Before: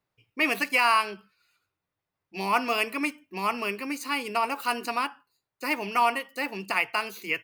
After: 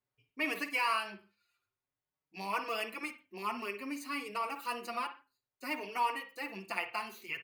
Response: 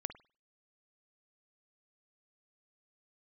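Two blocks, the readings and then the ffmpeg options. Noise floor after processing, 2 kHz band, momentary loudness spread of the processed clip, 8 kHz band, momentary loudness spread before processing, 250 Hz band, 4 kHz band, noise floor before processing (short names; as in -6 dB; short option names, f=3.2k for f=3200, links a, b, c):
under -85 dBFS, -10.0 dB, 12 LU, -10.0 dB, 11 LU, -9.5 dB, -9.5 dB, under -85 dBFS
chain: -filter_complex "[1:a]atrim=start_sample=2205,afade=t=out:st=0.22:d=0.01,atrim=end_sample=10143[a];[0:a][a]afir=irnorm=-1:irlink=0,asplit=2[b][c];[c]adelay=5.1,afreqshift=0.55[d];[b][d]amix=inputs=2:normalize=1,volume=-5dB"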